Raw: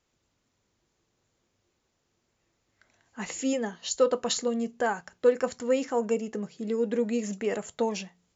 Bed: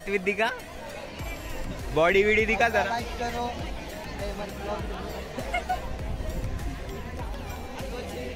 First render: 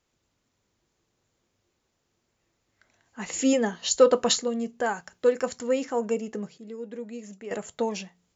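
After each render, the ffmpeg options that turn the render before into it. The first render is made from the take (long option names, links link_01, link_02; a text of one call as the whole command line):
ffmpeg -i in.wav -filter_complex "[0:a]asettb=1/sr,asplit=3[link_01][link_02][link_03];[link_01]atrim=end=3.334[link_04];[link_02]atrim=start=3.33:end=4.36,asetpts=PTS-STARTPTS,afade=type=in:duration=0.004:curve=qsin,afade=type=out:start_time=1.026:duration=0.004:curve=qsin,acontrast=47[link_05];[link_03]atrim=start=4.356[link_06];[link_04][link_05]acrossfade=duration=0.004:curve1=hsin:curve2=qsin[link_07];[link_07][link_06]acrossfade=duration=0.004:curve1=qsin:curve2=hsin,asettb=1/sr,asplit=3[link_08][link_09][link_10];[link_08]atrim=end=4.864[link_11];[link_09]atrim=start=4.86:end=5.67,asetpts=PTS-STARTPTS,afade=type=in:duration=0.004:curve=qsin,afade=type=out:start_time=0.806:duration=0.004:curve=qsin,highshelf=frequency=4000:gain=5[link_12];[link_10]atrim=start=5.666[link_13];[link_11][link_12]acrossfade=duration=0.004:curve1=hsin:curve2=qsin[link_14];[link_14][link_13]acrossfade=duration=0.004:curve1=qsin:curve2=hsin,asplit=3[link_15][link_16][link_17];[link_15]atrim=end=6.582[link_18];[link_16]atrim=start=6.578:end=7.512,asetpts=PTS-STARTPTS,volume=-10dB[link_19];[link_17]atrim=start=7.508[link_20];[link_18][link_19]acrossfade=duration=0.004:curve1=hsin:curve2=hsin[link_21];[link_21][link_20]acrossfade=duration=0.004:curve1=hsin:curve2=hsin" out.wav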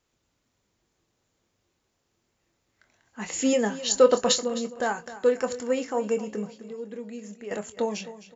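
ffmpeg -i in.wav -filter_complex "[0:a]asplit=2[link_01][link_02];[link_02]adelay=24,volume=-10dB[link_03];[link_01][link_03]amix=inputs=2:normalize=0,aecho=1:1:260|520|780:0.178|0.064|0.023" out.wav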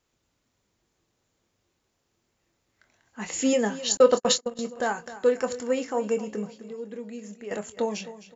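ffmpeg -i in.wav -filter_complex "[0:a]asettb=1/sr,asplit=3[link_01][link_02][link_03];[link_01]atrim=end=3.974[link_04];[link_02]atrim=start=3.97:end=4.59,asetpts=PTS-STARTPTS,afade=type=in:duration=0.004:curve=qsin,afade=type=out:start_time=0.616:duration=0.004:curve=qsin,agate=range=-36dB:threshold=-27dB:ratio=16:release=100:detection=peak[link_05];[link_03]atrim=start=4.586[link_06];[link_04][link_05]acrossfade=duration=0.004:curve1=hsin:curve2=qsin[link_07];[link_07][link_06]acrossfade=duration=0.004:curve1=qsin:curve2=hsin" out.wav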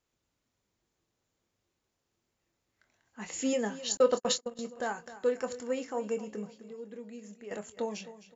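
ffmpeg -i in.wav -af "volume=-7dB" out.wav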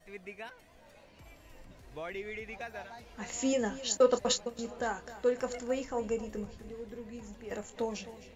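ffmpeg -i in.wav -i bed.wav -filter_complex "[1:a]volume=-19.5dB[link_01];[0:a][link_01]amix=inputs=2:normalize=0" out.wav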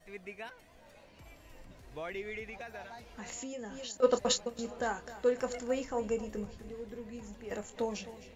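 ffmpeg -i in.wav -filter_complex "[0:a]asplit=3[link_01][link_02][link_03];[link_01]afade=type=out:start_time=2.45:duration=0.02[link_04];[link_02]acompressor=threshold=-39dB:ratio=6:attack=3.2:release=140:knee=1:detection=peak,afade=type=in:start_time=2.45:duration=0.02,afade=type=out:start_time=4.02:duration=0.02[link_05];[link_03]afade=type=in:start_time=4.02:duration=0.02[link_06];[link_04][link_05][link_06]amix=inputs=3:normalize=0" out.wav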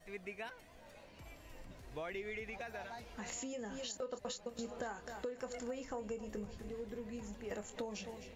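ffmpeg -i in.wav -af "alimiter=level_in=1dB:limit=-24dB:level=0:latency=1:release=314,volume=-1dB,acompressor=threshold=-39dB:ratio=6" out.wav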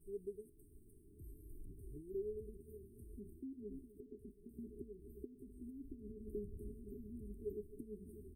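ffmpeg -i in.wav -af "afftfilt=real='re*(1-between(b*sr/4096,440,8200))':imag='im*(1-between(b*sr/4096,440,8200))':win_size=4096:overlap=0.75,aecho=1:1:2.4:0.45" out.wav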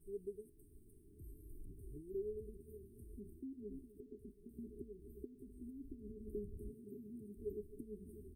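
ffmpeg -i in.wav -filter_complex "[0:a]asplit=3[link_01][link_02][link_03];[link_01]afade=type=out:start_time=6.7:duration=0.02[link_04];[link_02]highpass=frequency=110:width=0.5412,highpass=frequency=110:width=1.3066,afade=type=in:start_time=6.7:duration=0.02,afade=type=out:start_time=7.36:duration=0.02[link_05];[link_03]afade=type=in:start_time=7.36:duration=0.02[link_06];[link_04][link_05][link_06]amix=inputs=3:normalize=0" out.wav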